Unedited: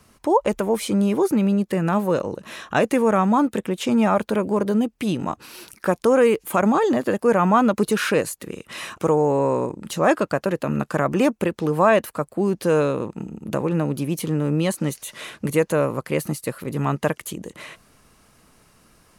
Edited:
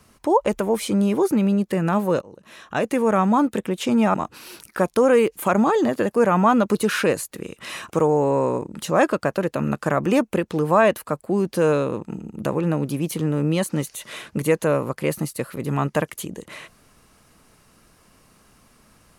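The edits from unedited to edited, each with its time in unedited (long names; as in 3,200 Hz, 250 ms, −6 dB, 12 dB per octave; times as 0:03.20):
0:02.21–0:03.19: fade in, from −20 dB
0:04.14–0:05.22: remove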